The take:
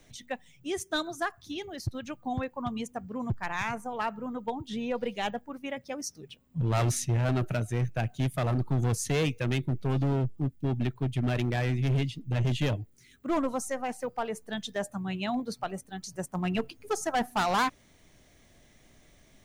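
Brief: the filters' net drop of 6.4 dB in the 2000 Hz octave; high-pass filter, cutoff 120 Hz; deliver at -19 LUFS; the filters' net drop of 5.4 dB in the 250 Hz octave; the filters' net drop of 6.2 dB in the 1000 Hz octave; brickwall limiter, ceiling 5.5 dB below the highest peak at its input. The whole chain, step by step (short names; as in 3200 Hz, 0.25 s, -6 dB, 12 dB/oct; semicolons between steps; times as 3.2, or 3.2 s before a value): HPF 120 Hz; bell 250 Hz -6 dB; bell 1000 Hz -7 dB; bell 2000 Hz -6 dB; gain +17.5 dB; limiter -7.5 dBFS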